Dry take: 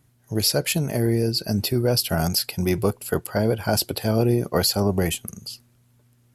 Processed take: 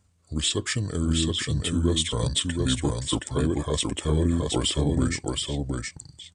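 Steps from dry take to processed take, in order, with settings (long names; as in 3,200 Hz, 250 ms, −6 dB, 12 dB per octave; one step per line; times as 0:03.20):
pitch shifter −6 semitones
single-tap delay 721 ms −3.5 dB
level −4 dB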